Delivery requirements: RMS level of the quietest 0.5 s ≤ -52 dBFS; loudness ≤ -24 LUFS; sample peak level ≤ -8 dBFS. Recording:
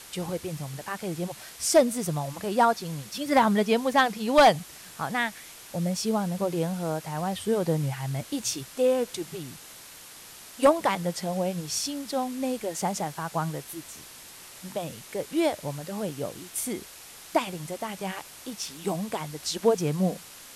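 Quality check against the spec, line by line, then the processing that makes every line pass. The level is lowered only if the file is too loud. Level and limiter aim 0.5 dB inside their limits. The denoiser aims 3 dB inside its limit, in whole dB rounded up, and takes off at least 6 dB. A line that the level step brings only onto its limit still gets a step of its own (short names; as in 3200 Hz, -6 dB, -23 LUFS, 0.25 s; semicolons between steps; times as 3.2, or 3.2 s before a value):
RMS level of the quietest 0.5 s -47 dBFS: fail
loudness -27.5 LUFS: OK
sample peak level -10.5 dBFS: OK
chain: denoiser 8 dB, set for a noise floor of -47 dBFS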